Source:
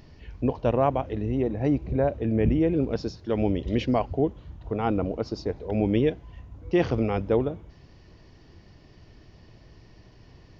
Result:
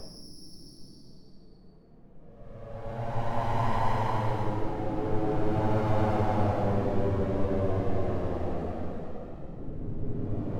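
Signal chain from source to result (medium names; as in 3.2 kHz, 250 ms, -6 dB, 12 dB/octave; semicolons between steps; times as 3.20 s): loudest bins only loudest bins 16; full-wave rectifier; Paulstretch 18×, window 0.10 s, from 3.11 s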